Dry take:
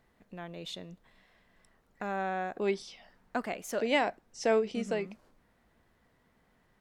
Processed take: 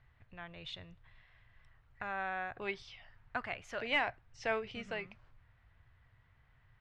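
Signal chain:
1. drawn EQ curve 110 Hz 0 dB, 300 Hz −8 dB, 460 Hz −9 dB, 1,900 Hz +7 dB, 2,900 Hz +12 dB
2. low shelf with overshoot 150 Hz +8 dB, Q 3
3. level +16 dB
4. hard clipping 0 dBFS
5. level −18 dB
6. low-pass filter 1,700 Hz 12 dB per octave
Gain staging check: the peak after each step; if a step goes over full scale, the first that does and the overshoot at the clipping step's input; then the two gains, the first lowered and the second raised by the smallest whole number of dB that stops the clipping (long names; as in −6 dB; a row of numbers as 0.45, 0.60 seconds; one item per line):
−9.0, −9.0, +7.0, 0.0, −18.0, −21.0 dBFS
step 3, 7.0 dB
step 3 +9 dB, step 5 −11 dB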